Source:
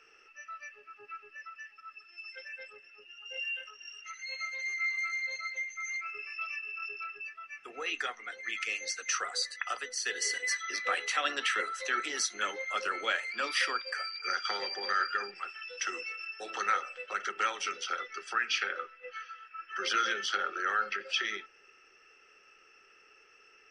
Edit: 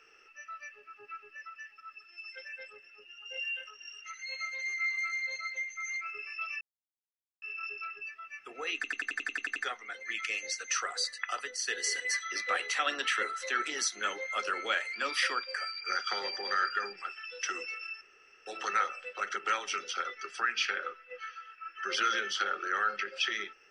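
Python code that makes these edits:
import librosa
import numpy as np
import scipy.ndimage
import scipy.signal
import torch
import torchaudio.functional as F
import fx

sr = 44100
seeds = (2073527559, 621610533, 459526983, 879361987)

y = fx.edit(x, sr, fx.insert_silence(at_s=6.61, length_s=0.81),
    fx.stutter(start_s=7.94, slice_s=0.09, count=10),
    fx.insert_room_tone(at_s=16.39, length_s=0.45), tone=tone)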